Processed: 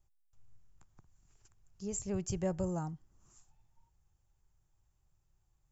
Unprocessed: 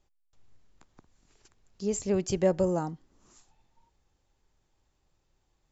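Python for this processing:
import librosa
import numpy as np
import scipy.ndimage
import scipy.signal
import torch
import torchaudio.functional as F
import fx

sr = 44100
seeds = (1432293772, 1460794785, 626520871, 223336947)

y = fx.graphic_eq_10(x, sr, hz=(125, 250, 500, 1000, 2000, 4000), db=(4, -11, -10, -4, -7, -12))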